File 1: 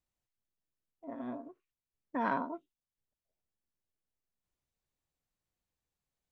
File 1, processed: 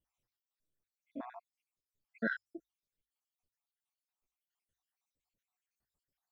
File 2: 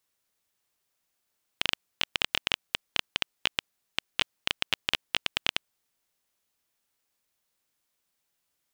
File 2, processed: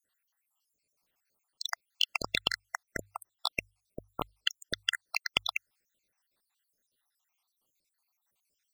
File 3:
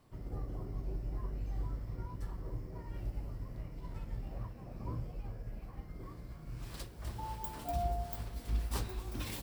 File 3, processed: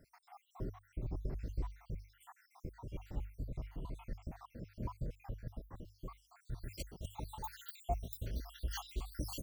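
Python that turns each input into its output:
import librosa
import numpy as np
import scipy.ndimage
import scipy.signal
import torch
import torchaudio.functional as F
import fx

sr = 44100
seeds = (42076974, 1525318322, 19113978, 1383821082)

y = fx.spec_dropout(x, sr, seeds[0], share_pct=74)
y = fx.hum_notches(y, sr, base_hz=50, count=2)
y = y * librosa.db_to_amplitude(4.0)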